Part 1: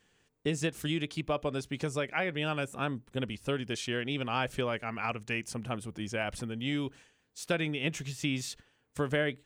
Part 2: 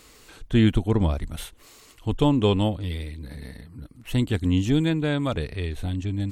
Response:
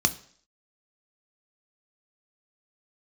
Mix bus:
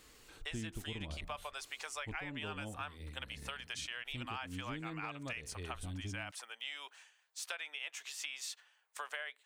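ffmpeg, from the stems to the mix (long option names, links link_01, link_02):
-filter_complex "[0:a]highpass=frequency=790:width=0.5412,highpass=frequency=790:width=1.3066,volume=0.5dB,asplit=2[link_01][link_02];[1:a]bandreject=frequency=83.94:width_type=h:width=4,bandreject=frequency=167.88:width_type=h:width=4,bandreject=frequency=251.82:width_type=h:width=4,bandreject=frequency=335.76:width_type=h:width=4,bandreject=frequency=419.7:width_type=h:width=4,bandreject=frequency=503.64:width_type=h:width=4,bandreject=frequency=587.58:width_type=h:width=4,bandreject=frequency=671.52:width_type=h:width=4,bandreject=frequency=755.46:width_type=h:width=4,bandreject=frequency=839.4:width_type=h:width=4,bandreject=frequency=923.34:width_type=h:width=4,bandreject=frequency=1007.28:width_type=h:width=4,bandreject=frequency=1091.22:width_type=h:width=4,bandreject=frequency=1175.16:width_type=h:width=4,bandreject=frequency=1259.1:width_type=h:width=4,bandreject=frequency=1343.04:width_type=h:width=4,bandreject=frequency=1426.98:width_type=h:width=4,volume=-9.5dB[link_03];[link_02]apad=whole_len=278525[link_04];[link_03][link_04]sidechaincompress=threshold=-33dB:ratio=8:attack=5.9:release=790[link_05];[link_01][link_05]amix=inputs=2:normalize=0,acompressor=threshold=-39dB:ratio=6"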